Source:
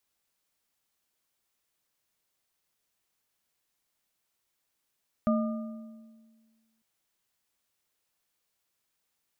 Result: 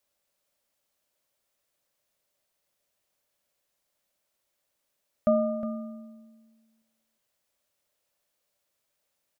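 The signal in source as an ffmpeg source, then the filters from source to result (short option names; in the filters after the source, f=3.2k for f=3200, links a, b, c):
-f lavfi -i "aevalsrc='0.0794*pow(10,-3*t/1.7)*sin(2*PI*224*t)+0.0473*pow(10,-3*t/1.254)*sin(2*PI*617.6*t)+0.0282*pow(10,-3*t/1.025)*sin(2*PI*1210.5*t)':d=1.55:s=44100"
-filter_complex "[0:a]equalizer=f=580:t=o:w=0.34:g=12,asplit=2[a][b];[b]aecho=0:1:362:0.282[c];[a][c]amix=inputs=2:normalize=0"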